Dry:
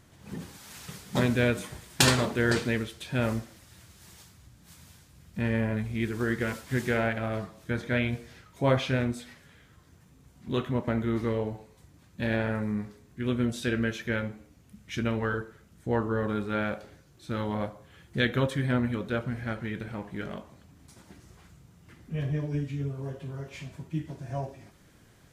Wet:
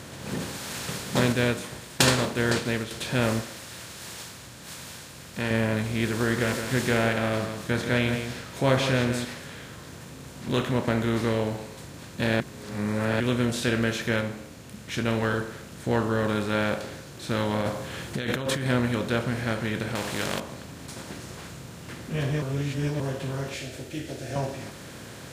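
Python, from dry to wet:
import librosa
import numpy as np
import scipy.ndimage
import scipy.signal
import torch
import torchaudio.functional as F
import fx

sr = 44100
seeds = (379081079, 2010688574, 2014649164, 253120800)

y = fx.upward_expand(x, sr, threshold_db=-37.0, expansion=1.5, at=(1.32, 2.91))
y = fx.low_shelf(y, sr, hz=460.0, db=-9.5, at=(3.41, 5.51))
y = fx.echo_single(y, sr, ms=165, db=-12.0, at=(6.16, 9.25))
y = fx.over_compress(y, sr, threshold_db=-35.0, ratio=-1.0, at=(17.61, 18.66))
y = fx.spectral_comp(y, sr, ratio=2.0, at=(19.95, 20.4))
y = fx.fixed_phaser(y, sr, hz=420.0, stages=4, at=(23.54, 24.36))
y = fx.edit(y, sr, fx.reverse_span(start_s=12.4, length_s=0.8),
    fx.clip_gain(start_s=14.21, length_s=0.87, db=-3.0),
    fx.reverse_span(start_s=22.42, length_s=0.58), tone=tone)
y = fx.bin_compress(y, sr, power=0.6)
y = scipy.signal.sosfilt(scipy.signal.butter(2, 55.0, 'highpass', fs=sr, output='sos'), y)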